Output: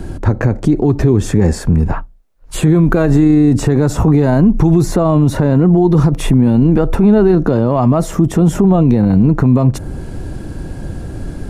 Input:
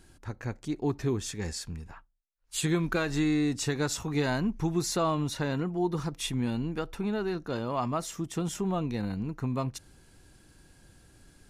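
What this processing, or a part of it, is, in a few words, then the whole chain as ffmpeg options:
mastering chain: -filter_complex "[0:a]equalizer=frequency=620:width_type=o:width=0.4:gain=3,acrossover=split=120|2200|7400[link_01][link_02][link_03][link_04];[link_01]acompressor=threshold=-45dB:ratio=4[link_05];[link_02]acompressor=threshold=-33dB:ratio=4[link_06];[link_03]acompressor=threshold=-54dB:ratio=4[link_07];[link_04]acompressor=threshold=-44dB:ratio=4[link_08];[link_05][link_06][link_07][link_08]amix=inputs=4:normalize=0,acompressor=threshold=-35dB:ratio=2,tiltshelf=frequency=1200:gain=9.5,alimiter=level_in=26dB:limit=-1dB:release=50:level=0:latency=1,volume=-2dB"

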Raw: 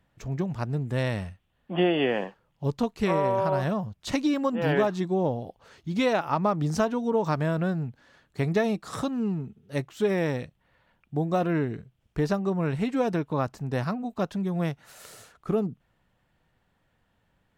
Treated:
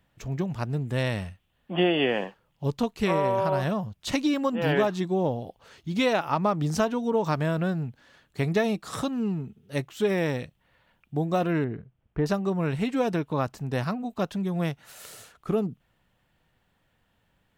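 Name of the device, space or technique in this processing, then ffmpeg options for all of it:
presence and air boost: -filter_complex "[0:a]asettb=1/sr,asplit=3[link_01][link_02][link_03];[link_01]atrim=end=11.644[link_04];[link_02]atrim=start=11.64:end=12.26,asetpts=PTS-STARTPTS,afade=type=in:duration=0.004:curve=qsin,afade=type=out:start_time=0.616:duration=0.004:curve=qsin,lowpass=1700[link_05];[link_03]atrim=start=12.256[link_06];[link_04][link_05]acrossfade=duration=0.004:curve1=hsin:curve2=qsin[link_07];[link_07][link_06]acrossfade=duration=0.004:curve1=qsin:curve2=hsin,equalizer=frequency=3000:width_type=o:width=0.91:gain=3.5,highshelf=frequency=9300:gain=6.5"

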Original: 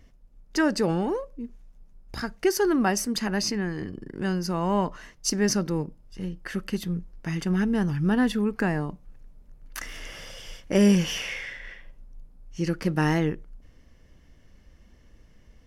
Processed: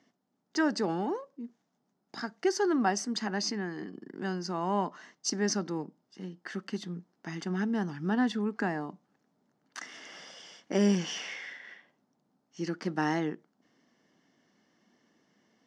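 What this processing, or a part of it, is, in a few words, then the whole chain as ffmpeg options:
television speaker: -af "highpass=frequency=200:width=0.5412,highpass=frequency=200:width=1.3066,equalizer=frequency=520:width_type=q:width=4:gain=-7,equalizer=frequency=760:width_type=q:width=4:gain=4,equalizer=frequency=2500:width_type=q:width=4:gain=-7,lowpass=frequency=7000:width=0.5412,lowpass=frequency=7000:width=1.3066,volume=-4dB"

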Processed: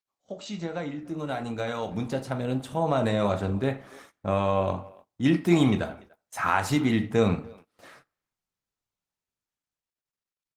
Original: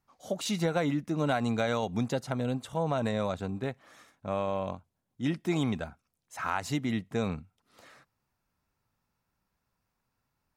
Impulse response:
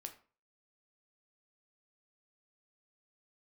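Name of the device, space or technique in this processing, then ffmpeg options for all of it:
speakerphone in a meeting room: -filter_complex "[0:a]asettb=1/sr,asplit=3[link_01][link_02][link_03];[link_01]atrim=end=3.714[link_04];[link_02]atrim=start=3.71:end=4.36,asetpts=PTS-STARTPTS,afade=type=in:duration=0.004:curve=qsin,afade=type=out:start_time=0.646:duration=0.004:curve=qsin,bandreject=frequency=235.3:width_type=h:width=4,bandreject=frequency=470.6:width_type=h:width=4,bandreject=frequency=705.9:width_type=h:width=4,bandreject=frequency=941.2:width_type=h:width=4,bandreject=frequency=1176.5:width_type=h:width=4,bandreject=frequency=1411.8:width_type=h:width=4,bandreject=frequency=1647.1:width_type=h:width=4,bandreject=frequency=1882.4:width_type=h:width=4,bandreject=frequency=2117.7:width_type=h:width=4,bandreject=frequency=2353:width_type=h:width=4,bandreject=frequency=2588.3:width_type=h:width=4,bandreject=frequency=2823.6:width_type=h:width=4,bandreject=frequency=3058.9:width_type=h:width=4,bandreject=frequency=3294.2:width_type=h:width=4,bandreject=frequency=3529.5:width_type=h:width=4,bandreject=frequency=3764.8:width_type=h:width=4,bandreject=frequency=4000.1:width_type=h:width=4,bandreject=frequency=4235.4:width_type=h:width=4,bandreject=frequency=4470.7:width_type=h:width=4,bandreject=frequency=4706:width_type=h:width=4,bandreject=frequency=4941.3:width_type=h:width=4,bandreject=frequency=5176.6:width_type=h:width=4,bandreject=frequency=5411.9:width_type=h:width=4,bandreject=frequency=5647.2:width_type=h:width=4,bandreject=frequency=5882.5:width_type=h:width=4,bandreject=frequency=6117.8:width_type=h:width=4,bandreject=frequency=6353.1:width_type=h:width=4,bandreject=frequency=6588.4:width_type=h:width=4,bandreject=frequency=6823.7:width_type=h:width=4,bandreject=frequency=7059:width_type=h:width=4,bandreject=frequency=7294.3:width_type=h:width=4[link_05];[link_03]atrim=start=4.356[link_06];[link_04][link_05]acrossfade=duration=0.004:curve1=hsin:curve2=qsin[link_07];[link_07][link_06]acrossfade=duration=0.004:curve1=qsin:curve2=hsin[link_08];[1:a]atrim=start_sample=2205[link_09];[link_08][link_09]afir=irnorm=-1:irlink=0,asplit=2[link_10][link_11];[link_11]adelay=290,highpass=300,lowpass=3400,asoftclip=type=hard:threshold=-29dB,volume=-22dB[link_12];[link_10][link_12]amix=inputs=2:normalize=0,dynaudnorm=framelen=300:gausssize=17:maxgain=12.5dB,agate=range=-19dB:threshold=-49dB:ratio=16:detection=peak" -ar 48000 -c:a libopus -b:a 24k

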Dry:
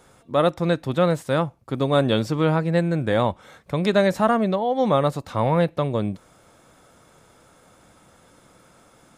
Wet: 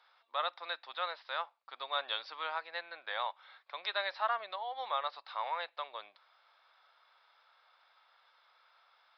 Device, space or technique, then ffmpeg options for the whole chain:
musical greeting card: -af "aresample=11025,aresample=44100,highpass=frequency=850:width=0.5412,highpass=frequency=850:width=1.3066,equalizer=frequency=3800:width_type=o:width=0.23:gain=4.5,volume=-8.5dB"

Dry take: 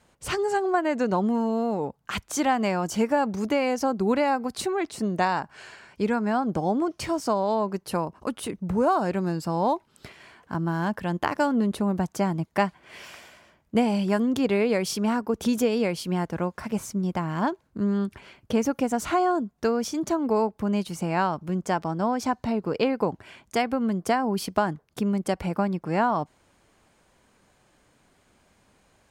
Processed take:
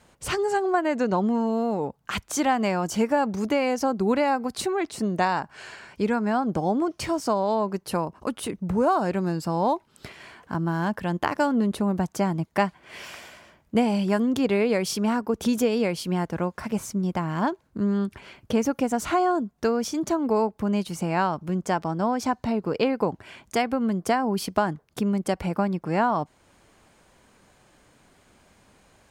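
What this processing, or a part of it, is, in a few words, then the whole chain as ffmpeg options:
parallel compression: -filter_complex "[0:a]asplit=2[link_01][link_02];[link_02]acompressor=threshold=-42dB:ratio=6,volume=-3.5dB[link_03];[link_01][link_03]amix=inputs=2:normalize=0,asettb=1/sr,asplit=3[link_04][link_05][link_06];[link_04]atrim=end=1.004[link_07];[link_05]atrim=start=1:end=1.47,asetpts=PTS-STARTPTS,afade=type=in:duration=0.004:curve=qsin,afade=type=out:start_time=0.466:duration=0.004:curve=qsin,lowpass=frequency=8300:width=0.5412,lowpass=frequency=8300:width=1.3066[link_08];[link_06]atrim=start=1.466[link_09];[link_07][link_08]acrossfade=duration=0.004:curve1=hsin:curve2=qsin[link_10];[link_10][link_09]acrossfade=duration=0.004:curve1=qsin:curve2=hsin"

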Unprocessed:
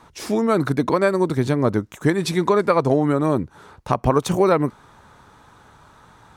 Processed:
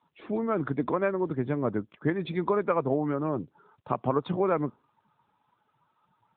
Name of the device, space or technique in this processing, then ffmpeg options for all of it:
mobile call with aggressive noise cancelling: -af "highpass=120,afftdn=noise_reduction=17:noise_floor=-39,volume=-8dB" -ar 8000 -c:a libopencore_amrnb -b:a 10200

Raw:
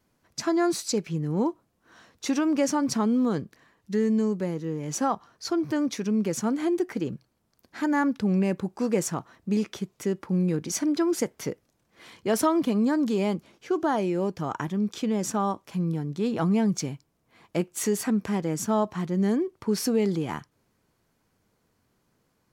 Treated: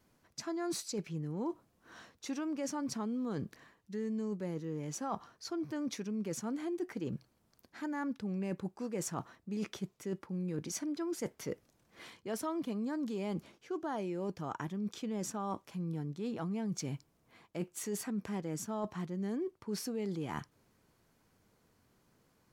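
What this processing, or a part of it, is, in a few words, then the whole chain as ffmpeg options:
compression on the reversed sound: -af "areverse,acompressor=threshold=-36dB:ratio=5,areverse"

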